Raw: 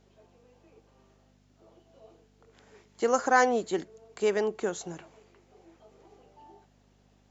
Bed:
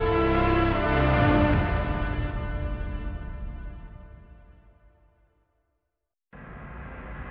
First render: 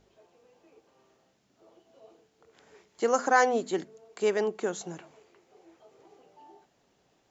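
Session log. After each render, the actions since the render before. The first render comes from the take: de-hum 50 Hz, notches 5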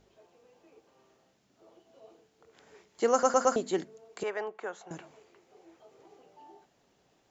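3.12 stutter in place 0.11 s, 4 plays; 4.23–4.91 three-band isolator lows -19 dB, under 560 Hz, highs -16 dB, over 2400 Hz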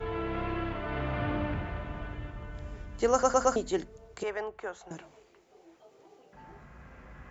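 add bed -11 dB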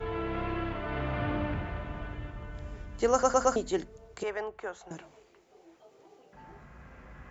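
nothing audible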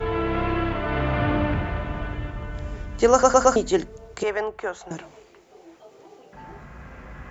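gain +9 dB; limiter -2 dBFS, peak gain reduction 1 dB

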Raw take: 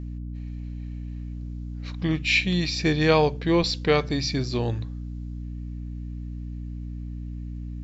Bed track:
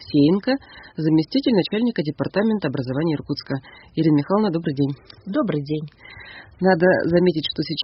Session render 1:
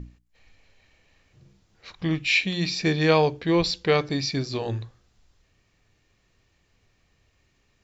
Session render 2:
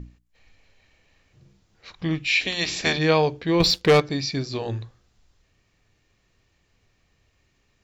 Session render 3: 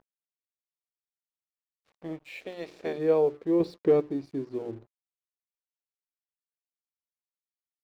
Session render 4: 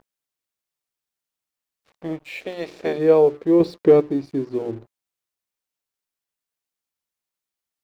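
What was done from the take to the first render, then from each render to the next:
notches 60/120/180/240/300/360 Hz
2.4–2.97 spectral limiter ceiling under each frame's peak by 21 dB; 3.6–4 sample leveller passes 2
band-pass sweep 920 Hz -> 340 Hz, 0.24–4.05; crossover distortion -54.5 dBFS
gain +8.5 dB

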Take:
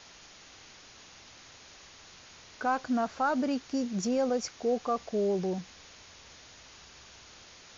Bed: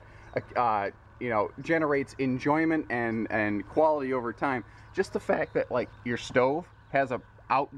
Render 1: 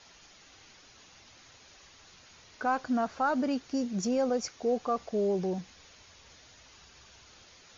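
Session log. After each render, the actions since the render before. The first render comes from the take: denoiser 6 dB, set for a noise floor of -53 dBFS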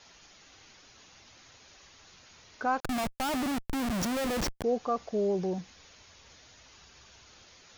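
2.8–4.64 Schmitt trigger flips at -37 dBFS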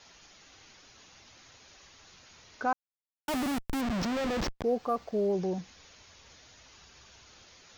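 2.73–3.28 mute; 3.81–5.33 decimation joined by straight lines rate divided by 4×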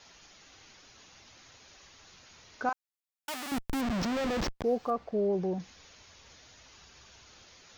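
2.69–3.52 HPF 1400 Hz 6 dB/oct; 4.9–5.6 LPF 2000 Hz 6 dB/oct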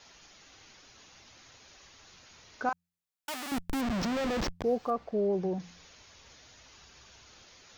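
de-hum 86.96 Hz, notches 2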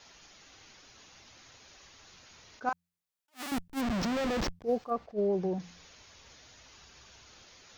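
attack slew limiter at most 360 dB/s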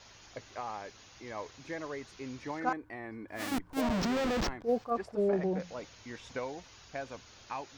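add bed -14 dB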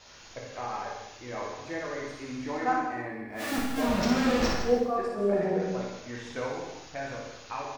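loudspeakers at several distances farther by 20 m -5 dB, 55 m -12 dB; non-linear reverb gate 0.36 s falling, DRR -2.5 dB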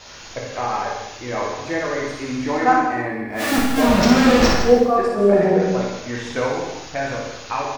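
gain +11.5 dB; limiter -2 dBFS, peak gain reduction 1 dB

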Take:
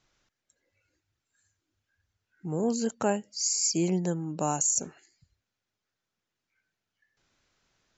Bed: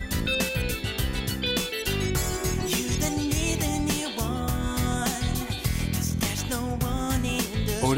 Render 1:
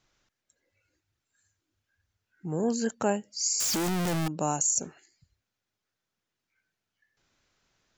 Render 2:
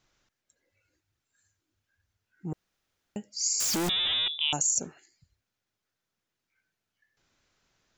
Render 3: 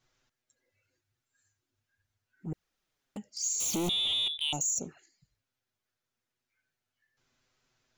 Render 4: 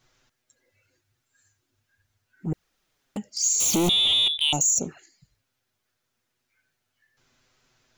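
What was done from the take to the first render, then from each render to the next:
2.51–2.95 bell 1700 Hz +12 dB 0.24 oct; 3.6–4.28 infinite clipping
2.53–3.16 room tone; 3.89–4.53 inverted band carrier 3700 Hz
soft clip -23.5 dBFS, distortion -15 dB; envelope flanger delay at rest 8.2 ms, full sweep at -30 dBFS
gain +9 dB

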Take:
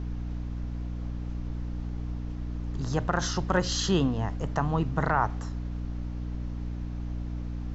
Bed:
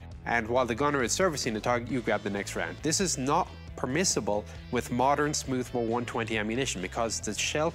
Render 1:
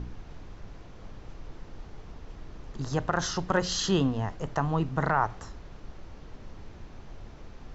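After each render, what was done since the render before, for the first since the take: de-hum 60 Hz, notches 5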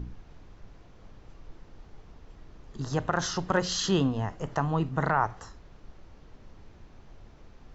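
noise print and reduce 6 dB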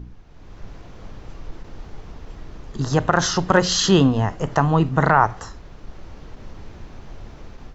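AGC gain up to 12.5 dB; ending taper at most 470 dB/s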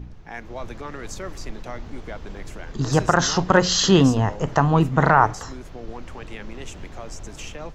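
add bed -9 dB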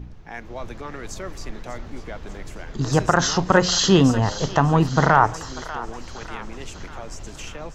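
thinning echo 0.593 s, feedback 64%, high-pass 820 Hz, level -13.5 dB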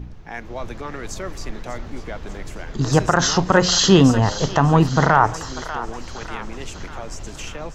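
gain +3 dB; limiter -2 dBFS, peak gain reduction 3 dB

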